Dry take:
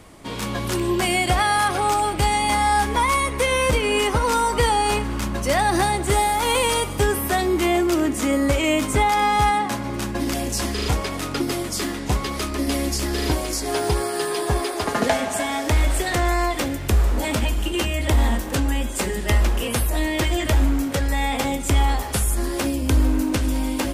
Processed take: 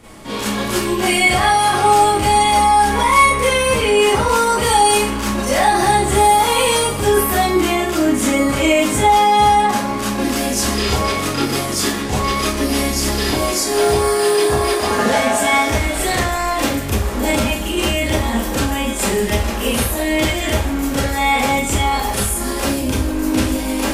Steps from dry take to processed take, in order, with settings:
0:04.59–0:05.06: high-shelf EQ 4,600 Hz +8.5 dB
brickwall limiter −14.5 dBFS, peak gain reduction 6.5 dB
four-comb reverb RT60 0.36 s, combs from 28 ms, DRR −9 dB
level −1.5 dB

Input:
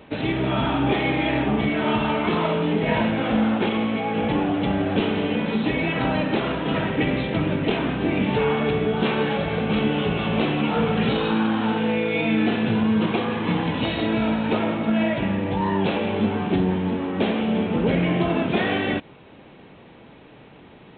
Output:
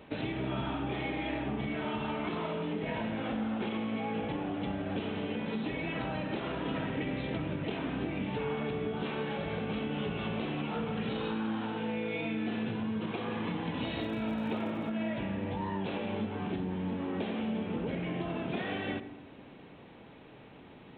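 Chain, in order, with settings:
downward compressor, threshold −26 dBFS, peak gain reduction 10 dB
0:13.97–0:14.88: surface crackle 46 per second −42 dBFS
on a send: convolution reverb RT60 0.90 s, pre-delay 83 ms, DRR 13 dB
on the sum: level −6 dB

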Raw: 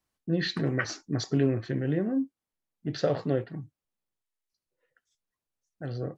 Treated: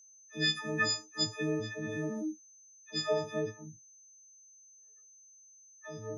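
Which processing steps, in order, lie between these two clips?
every partial snapped to a pitch grid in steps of 6 semitones
low-shelf EQ 180 Hz −8 dB
low-pass that shuts in the quiet parts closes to 680 Hz, open at −25.5 dBFS
all-pass dispersion lows, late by 104 ms, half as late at 650 Hz
steady tone 6,200 Hz −50 dBFS
level −6 dB

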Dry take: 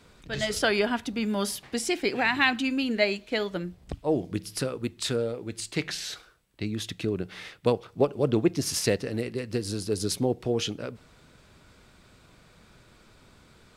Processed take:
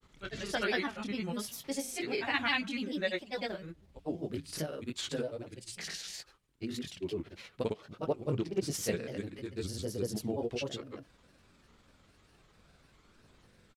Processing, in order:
multi-voice chorus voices 2, 0.15 Hz, delay 25 ms, depth 4.2 ms
granular cloud, grains 20 per second, pitch spread up and down by 3 semitones
level −3.5 dB

